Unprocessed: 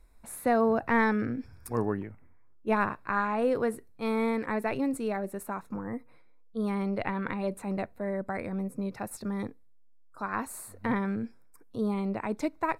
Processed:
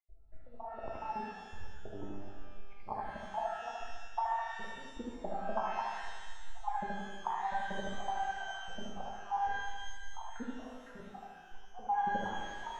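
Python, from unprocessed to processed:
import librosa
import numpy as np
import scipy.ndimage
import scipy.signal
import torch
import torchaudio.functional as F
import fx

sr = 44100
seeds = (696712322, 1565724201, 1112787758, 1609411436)

p1 = fx.spec_dropout(x, sr, seeds[0], share_pct=78)
p2 = fx.peak_eq(p1, sr, hz=150.0, db=-12.0, octaves=2.5)
p3 = fx.level_steps(p2, sr, step_db=12)
p4 = p2 + (p3 * 10.0 ** (2.5 / 20.0))
p5 = fx.env_flanger(p4, sr, rest_ms=2.9, full_db=-30.5)
p6 = fx.low_shelf(p5, sr, hz=93.0, db=11.0)
p7 = fx.over_compress(p6, sr, threshold_db=-38.0, ratio=-0.5)
p8 = fx.ladder_lowpass(p7, sr, hz=870.0, resonance_pct=75)
p9 = p8 + fx.echo_single(p8, sr, ms=75, db=-3.5, dry=0)
p10 = fx.rev_shimmer(p9, sr, seeds[1], rt60_s=1.5, semitones=12, shimmer_db=-8, drr_db=-0.5)
y = p10 * 10.0 ** (7.0 / 20.0)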